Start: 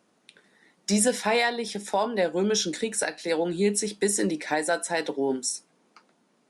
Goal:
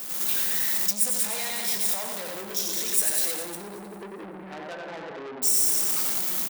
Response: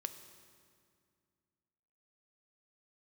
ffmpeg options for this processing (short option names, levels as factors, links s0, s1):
-filter_complex "[0:a]aeval=exprs='val(0)+0.5*0.0316*sgn(val(0))':c=same,asettb=1/sr,asplit=3[s0][s1][s2];[s0]atrim=end=3.414[s3];[s1]atrim=start=3.41:end=5.42,asetpts=PTS-STARTPTS,afade=t=in:d=0.004:c=qsin,afade=t=out:st=2.006:d=0.004:c=qsin,lowpass=f=1400:w=0.5412,lowpass=f=1400:w=1.3066[s4];[s2]atrim=start=5.416[s5];[s3][s4]acrossfade=d=0.004:c1=hsin:c2=qsin[s6];[s6][s5]acrossfade=d=0.004:c1=qsin:c2=hsin,aecho=1:1:90|189|297.9|417.7|549.5:0.631|0.398|0.251|0.158|0.1,agate=range=0.282:threshold=0.02:ratio=16:detection=peak,equalizer=f=160:w=2.1:g=10[s7];[1:a]atrim=start_sample=2205[s8];[s7][s8]afir=irnorm=-1:irlink=0,acompressor=threshold=0.0398:ratio=3,asoftclip=type=tanh:threshold=0.0211,aemphasis=mode=production:type=riaa,volume=1.19"